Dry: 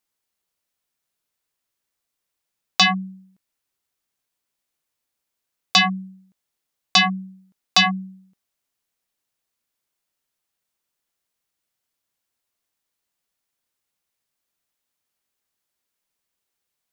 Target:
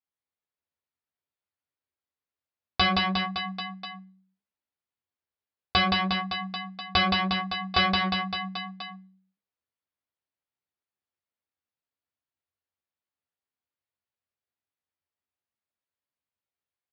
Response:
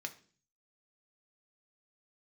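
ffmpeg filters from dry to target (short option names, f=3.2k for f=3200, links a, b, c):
-filter_complex "[0:a]agate=range=-13dB:threshold=-51dB:ratio=16:detection=peak,aecho=1:1:170|357|562.7|789|1038:0.631|0.398|0.251|0.158|0.1,aresample=16000,aeval=exprs='clip(val(0),-1,0.0531)':c=same,aresample=44100,equalizer=f=92:t=o:w=0.41:g=11,asplit=2[a][b];[1:a]atrim=start_sample=2205,lowpass=6.2k[c];[b][c]afir=irnorm=-1:irlink=0,volume=-14dB[d];[a][d]amix=inputs=2:normalize=0,aresample=11025,aresample=44100,highpass=58,highshelf=f=3.2k:g=-10.5,bandreject=f=50:t=h:w=6,bandreject=f=100:t=h:w=6,bandreject=f=150:t=h:w=6,bandreject=f=200:t=h:w=6,bandreject=f=250:t=h:w=6,bandreject=f=300:t=h:w=6,bandreject=f=350:t=h:w=6,bandreject=f=400:t=h:w=6,bandreject=f=450:t=h:w=6,asplit=2[e][f];[f]adelay=14,volume=-4dB[g];[e][g]amix=inputs=2:normalize=0"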